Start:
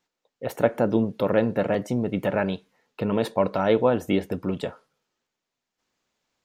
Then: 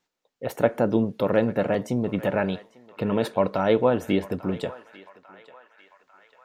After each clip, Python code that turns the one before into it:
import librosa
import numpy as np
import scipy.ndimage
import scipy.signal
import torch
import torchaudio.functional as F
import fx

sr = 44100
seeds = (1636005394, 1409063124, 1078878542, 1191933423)

y = fx.echo_banded(x, sr, ms=846, feedback_pct=64, hz=1700.0, wet_db=-15.0)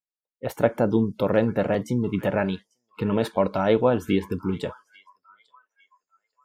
y = fx.noise_reduce_blind(x, sr, reduce_db=28)
y = fx.low_shelf(y, sr, hz=79.0, db=8.5)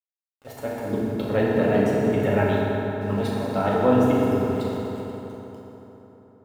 y = fx.auto_swell(x, sr, attack_ms=149.0)
y = np.where(np.abs(y) >= 10.0 ** (-44.5 / 20.0), y, 0.0)
y = fx.rev_fdn(y, sr, rt60_s=3.9, lf_ratio=1.0, hf_ratio=0.55, size_ms=22.0, drr_db=-6.5)
y = y * 10.0 ** (-3.5 / 20.0)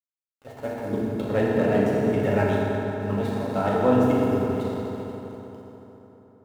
y = scipy.signal.medfilt(x, 9)
y = y * 10.0 ** (-1.0 / 20.0)